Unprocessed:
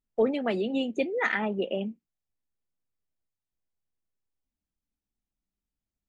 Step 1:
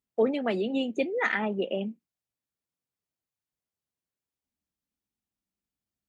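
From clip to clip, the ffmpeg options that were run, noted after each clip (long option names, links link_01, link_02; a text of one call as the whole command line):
ffmpeg -i in.wav -af "highpass=82" out.wav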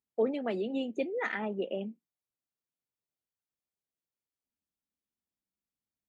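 ffmpeg -i in.wav -af "equalizer=frequency=410:width_type=o:width=2.3:gain=4,volume=-8dB" out.wav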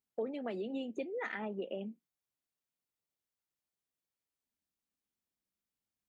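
ffmpeg -i in.wav -af "acompressor=threshold=-38dB:ratio=2.5" out.wav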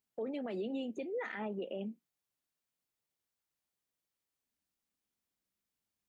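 ffmpeg -i in.wav -af "alimiter=level_in=9dB:limit=-24dB:level=0:latency=1:release=36,volume=-9dB,volume=2dB" out.wav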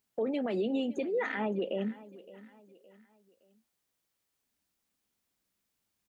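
ffmpeg -i in.wav -af "aecho=1:1:566|1132|1698:0.112|0.0449|0.018,volume=7dB" out.wav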